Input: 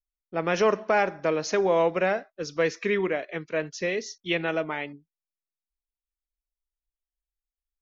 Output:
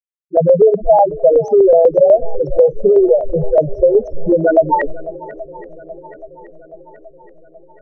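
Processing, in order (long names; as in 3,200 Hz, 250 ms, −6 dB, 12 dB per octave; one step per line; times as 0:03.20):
hold until the input has moved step −36 dBFS
noise gate −51 dBFS, range −26 dB
low-shelf EQ 110 Hz +11.5 dB
spectral peaks only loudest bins 2
downward compressor 2 to 1, threshold −35 dBFS, peak gain reduction 8.5 dB
dynamic equaliser 1,400 Hz, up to +5 dB, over −51 dBFS, Q 1
auto-filter low-pass saw up 8.1 Hz 530–2,500 Hz
feedback echo with a long and a short gap by turns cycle 826 ms, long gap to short 1.5 to 1, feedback 54%, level −20 dB
boost into a limiter +21.5 dB
level −1 dB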